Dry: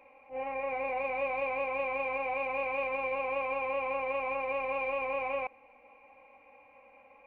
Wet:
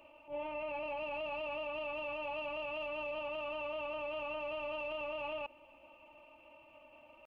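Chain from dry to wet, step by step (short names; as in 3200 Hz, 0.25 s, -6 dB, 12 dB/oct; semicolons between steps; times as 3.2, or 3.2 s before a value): bell 1200 Hz -10 dB 2.1 oct; limiter -37.5 dBFS, peak gain reduction 9.5 dB; pitch shift +2 st; gain +4.5 dB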